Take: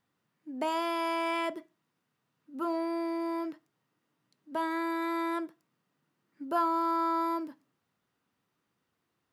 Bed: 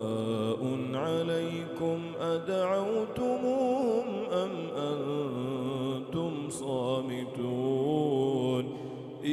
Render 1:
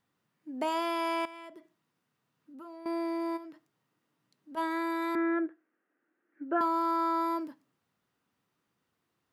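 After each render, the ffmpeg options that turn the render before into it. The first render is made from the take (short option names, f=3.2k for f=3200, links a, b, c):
-filter_complex "[0:a]asettb=1/sr,asplit=3[a][b][c];[a]atrim=end=1.254[d];[b]atrim=start=1.25:end=2.86,asetpts=PTS-STARTPTS,afade=t=in:d=0.004:c=qsin,afade=t=out:st=1.606:d=0.004:c=qsin,acompressor=threshold=-49dB:ratio=3:attack=3.2:release=140:knee=1:detection=peak[e];[c]atrim=start=2.856[f];[d][e]acrossfade=d=0.004:c1=hsin:c2=qsin[g];[g][f]acrossfade=d=0.004:c1=qsin:c2=hsin,asplit=3[h][i][j];[h]afade=t=out:st=3.36:d=0.02[k];[i]acompressor=threshold=-44dB:ratio=5:attack=3.2:release=140:knee=1:detection=peak,afade=t=in:st=3.36:d=0.02,afade=t=out:st=4.56:d=0.02[l];[j]afade=t=in:st=4.56:d=0.02[m];[k][l][m]amix=inputs=3:normalize=0,asettb=1/sr,asplit=3[n][o][p];[n]atrim=end=5.154[q];[o]atrim=start=5.15:end=6.61,asetpts=PTS-STARTPTS,afade=t=in:d=0.004:c=qsin,afade=t=out:st=1.456:d=0.004:c=qsin,highpass=f=280:w=0.5412,highpass=f=280:w=1.3066,equalizer=f=320:t=q:w=4:g=7,equalizer=f=1k:t=q:w=4:g=-9,equalizer=f=1.6k:t=q:w=4:g=8,lowpass=f=2.2k:w=0.5412,lowpass=f=2.2k:w=1.3066[r];[p]atrim=start=6.606[s];[q][r]acrossfade=d=0.004:c1=hsin:c2=qsin[t];[t][s]acrossfade=d=0.004:c1=qsin:c2=hsin"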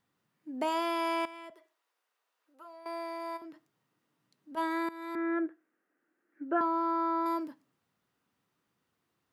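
-filter_complex "[0:a]asettb=1/sr,asplit=3[a][b][c];[a]atrim=end=1.504[d];[b]atrim=start=1.5:end=3.42,asetpts=PTS-STARTPTS,afade=t=in:d=0.004:c=qsin,afade=t=out:st=1.916:d=0.004:c=qsin,highpass=f=480:w=0.5412,highpass=f=480:w=1.3066[e];[c]atrim=start=3.416[f];[d][e]acrossfade=d=0.004:c1=hsin:c2=qsin[g];[g][f]acrossfade=d=0.004:c1=qsin:c2=hsin,asettb=1/sr,asplit=3[h][i][j];[h]atrim=end=6.604[k];[i]atrim=start=6.6:end=7.26,asetpts=PTS-STARTPTS,afade=t=in:d=0.004:c=qsin,afade=t=out:st=0.656:d=0.004:c=qsin,lowpass=f=1.6k:p=1[l];[j]atrim=start=7.256[m];[k][l]acrossfade=d=0.004:c1=hsin:c2=qsin[n];[n][m]acrossfade=d=0.004:c1=qsin:c2=hsin,asplit=2[o][p];[o]atrim=end=4.89,asetpts=PTS-STARTPTS,afade=t=out:st=4.886:d=0.004:c=hsin:silence=0.141254[q];[p]atrim=start=4.89,asetpts=PTS-STARTPTS,afade=t=in:d=0.57:silence=0.141254[r];[q][r]concat=n=2:v=0:a=1"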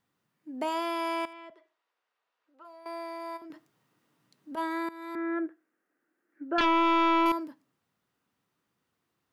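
-filter_complex "[0:a]asettb=1/sr,asplit=3[a][b][c];[a]atrim=end=1.334[d];[b]atrim=start=1.33:end=2.65,asetpts=PTS-STARTPTS,afade=t=in:d=0.004:c=qsin,afade=t=out:st=1.316:d=0.004:c=qsin,lowpass=4.2k[e];[c]atrim=start=2.646[f];[d][e]acrossfade=d=0.004:c1=hsin:c2=qsin[g];[g][f]acrossfade=d=0.004:c1=qsin:c2=hsin,asettb=1/sr,asplit=3[h][i][j];[h]atrim=end=3.504[k];[i]atrim=start=3.5:end=4.56,asetpts=PTS-STARTPTS,afade=t=in:d=0.004:c=qsin,afade=t=out:st=1.056:d=0.004:c=qsin,acontrast=55[l];[j]atrim=start=4.556[m];[k][l]acrossfade=d=0.004:c1=hsin:c2=qsin[n];[n][m]acrossfade=d=0.004:c1=qsin:c2=hsin,asettb=1/sr,asplit=3[o][p][q];[o]atrim=end=6.584[r];[p]atrim=start=6.58:end=7.32,asetpts=PTS-STARTPTS,afade=t=in:d=0.004:c=qsin,afade=t=out:st=0.736:d=0.004:c=qsin,aeval=exprs='0.0944*sin(PI/2*2.24*val(0)/0.0944)':c=same[s];[q]atrim=start=7.316[t];[r][s]acrossfade=d=0.004:c1=hsin:c2=qsin[u];[u][t]acrossfade=d=0.004:c1=qsin:c2=hsin"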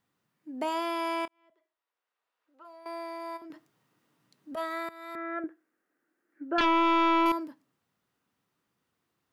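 -filter_complex "[0:a]asettb=1/sr,asplit=3[a][b][c];[a]atrim=end=4.544[d];[b]atrim=start=4.54:end=5.44,asetpts=PTS-STARTPTS,afade=t=in:d=0.004:c=qsin,afade=t=out:st=0.896:d=0.004:c=qsin,aecho=1:1:1.6:0.65,atrim=end_sample=39690[e];[c]atrim=start=5.436[f];[d][e]acrossfade=d=0.004:c1=hsin:c2=qsin[g];[g][f]acrossfade=d=0.004:c1=qsin:c2=hsin,asplit=2[h][i];[h]atrim=end=1.28,asetpts=PTS-STARTPTS,afade=t=out:st=1.276:d=0.004:c=hsin[j];[i]atrim=start=1.28,asetpts=PTS-STARTPTS,afade=t=in:d=1.41[k];[j][k]concat=n=2:v=0:a=1"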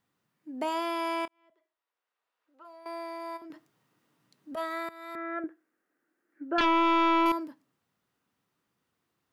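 -af anull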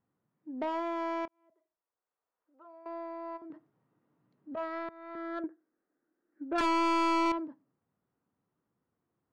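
-af "adynamicsmooth=sensitivity=1:basefreq=1.2k,asoftclip=type=tanh:threshold=-24dB"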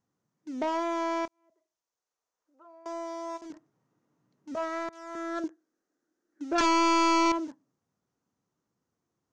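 -filter_complex "[0:a]asplit=2[a][b];[b]aeval=exprs='val(0)*gte(abs(val(0)),0.00531)':c=same,volume=-5dB[c];[a][c]amix=inputs=2:normalize=0,lowpass=f=6.3k:t=q:w=3.9"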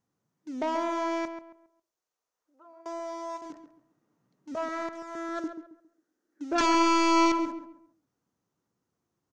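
-filter_complex "[0:a]asplit=2[a][b];[b]adelay=136,lowpass=f=1.9k:p=1,volume=-8dB,asplit=2[c][d];[d]adelay=136,lowpass=f=1.9k:p=1,volume=0.31,asplit=2[e][f];[f]adelay=136,lowpass=f=1.9k:p=1,volume=0.31,asplit=2[g][h];[h]adelay=136,lowpass=f=1.9k:p=1,volume=0.31[i];[a][c][e][g][i]amix=inputs=5:normalize=0"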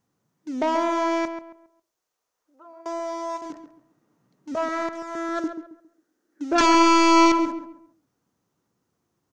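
-af "volume=6.5dB"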